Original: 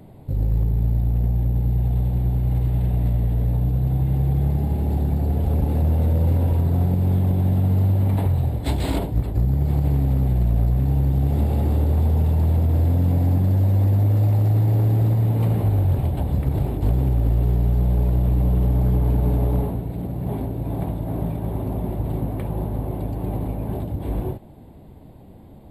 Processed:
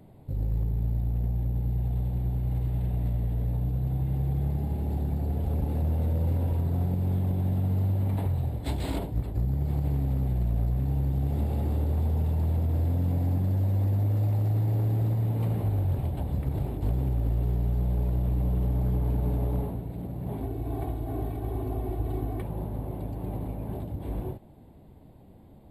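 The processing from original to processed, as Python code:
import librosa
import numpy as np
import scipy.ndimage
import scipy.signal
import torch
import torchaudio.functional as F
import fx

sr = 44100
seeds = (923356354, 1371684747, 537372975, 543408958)

y = fx.comb(x, sr, ms=2.7, depth=0.89, at=(20.42, 22.42))
y = y * 10.0 ** (-7.5 / 20.0)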